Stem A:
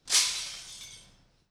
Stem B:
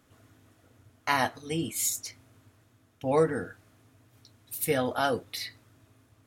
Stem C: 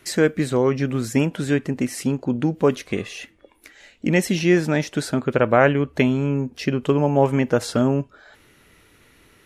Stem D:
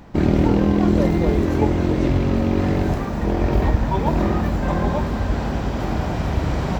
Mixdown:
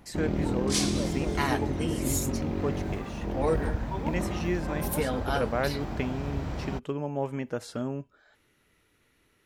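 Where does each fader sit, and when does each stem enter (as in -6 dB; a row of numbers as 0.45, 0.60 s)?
-5.5, -3.5, -13.5, -12.0 dB; 0.60, 0.30, 0.00, 0.00 s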